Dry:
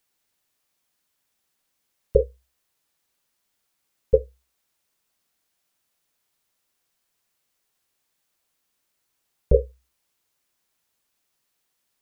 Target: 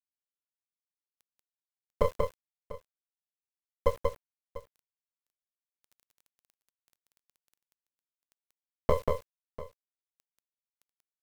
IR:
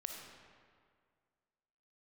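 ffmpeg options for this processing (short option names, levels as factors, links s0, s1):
-filter_complex "[0:a]highpass=420,equalizer=f=620:t=o:w=1.5:g=-2.5,dynaudnorm=f=110:g=7:m=6.31,alimiter=limit=0.376:level=0:latency=1:release=10,acompressor=threshold=0.126:ratio=20,aeval=exprs='max(val(0),0)':c=same,acrusher=bits=7:mix=0:aa=0.000001,asetrate=47187,aresample=44100,asplit=2[s0][s1];[s1]aecho=0:1:186|694:0.668|0.15[s2];[s0][s2]amix=inputs=2:normalize=0,volume=1.26"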